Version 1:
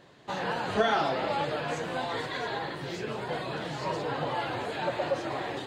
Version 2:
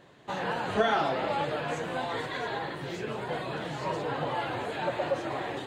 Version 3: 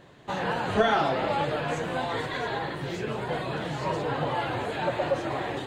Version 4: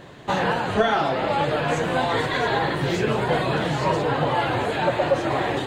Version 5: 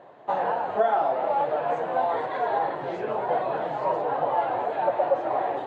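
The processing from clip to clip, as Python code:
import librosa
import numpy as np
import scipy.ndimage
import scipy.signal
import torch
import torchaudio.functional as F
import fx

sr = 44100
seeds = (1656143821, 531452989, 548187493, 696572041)

y1 = fx.peak_eq(x, sr, hz=4900.0, db=-5.5, octaves=0.6)
y2 = fx.low_shelf(y1, sr, hz=100.0, db=8.5)
y2 = y2 * librosa.db_to_amplitude(2.5)
y3 = fx.rider(y2, sr, range_db=4, speed_s=0.5)
y3 = y3 * librosa.db_to_amplitude(6.0)
y4 = fx.bandpass_q(y3, sr, hz=720.0, q=2.2)
y4 = y4 * librosa.db_to_amplitude(1.5)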